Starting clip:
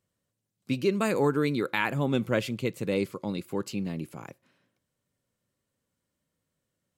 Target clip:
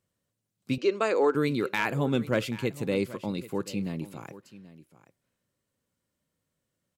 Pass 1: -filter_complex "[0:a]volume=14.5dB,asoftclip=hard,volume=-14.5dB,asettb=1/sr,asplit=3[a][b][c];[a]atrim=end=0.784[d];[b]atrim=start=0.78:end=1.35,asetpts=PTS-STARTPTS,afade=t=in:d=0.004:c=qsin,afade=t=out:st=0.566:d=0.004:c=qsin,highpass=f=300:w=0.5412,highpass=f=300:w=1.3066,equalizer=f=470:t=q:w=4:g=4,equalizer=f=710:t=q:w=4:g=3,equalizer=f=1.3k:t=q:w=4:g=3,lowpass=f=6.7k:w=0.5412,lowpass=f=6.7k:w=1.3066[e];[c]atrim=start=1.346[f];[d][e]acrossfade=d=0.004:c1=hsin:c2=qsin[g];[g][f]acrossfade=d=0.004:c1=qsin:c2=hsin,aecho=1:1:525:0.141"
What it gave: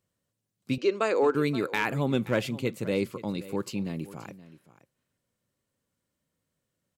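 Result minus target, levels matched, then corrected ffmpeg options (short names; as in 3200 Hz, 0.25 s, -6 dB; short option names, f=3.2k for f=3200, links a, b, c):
echo 0.258 s early
-filter_complex "[0:a]volume=14.5dB,asoftclip=hard,volume=-14.5dB,asettb=1/sr,asplit=3[a][b][c];[a]atrim=end=0.784[d];[b]atrim=start=0.78:end=1.35,asetpts=PTS-STARTPTS,afade=t=in:d=0.004:c=qsin,afade=t=out:st=0.566:d=0.004:c=qsin,highpass=f=300:w=0.5412,highpass=f=300:w=1.3066,equalizer=f=470:t=q:w=4:g=4,equalizer=f=710:t=q:w=4:g=3,equalizer=f=1.3k:t=q:w=4:g=3,lowpass=f=6.7k:w=0.5412,lowpass=f=6.7k:w=1.3066[e];[c]atrim=start=1.346[f];[d][e]acrossfade=d=0.004:c1=hsin:c2=qsin[g];[g][f]acrossfade=d=0.004:c1=qsin:c2=hsin,aecho=1:1:783:0.141"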